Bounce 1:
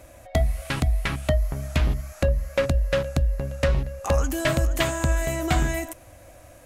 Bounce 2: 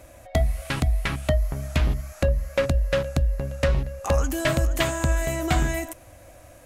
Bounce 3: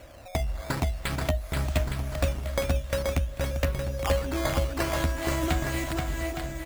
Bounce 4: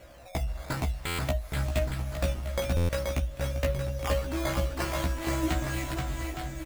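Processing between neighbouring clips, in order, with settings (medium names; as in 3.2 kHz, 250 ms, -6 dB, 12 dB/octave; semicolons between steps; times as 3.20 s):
no audible change
compression, threshold -25 dBFS, peak gain reduction 8.5 dB; decimation with a swept rate 9×, swing 160% 0.5 Hz; on a send: bouncing-ball echo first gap 480 ms, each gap 0.8×, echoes 5
flange 0.41 Hz, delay 5.5 ms, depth 1.7 ms, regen +72%; doubling 16 ms -2.5 dB; buffer glitch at 1.06/2.76 s, samples 512, times 10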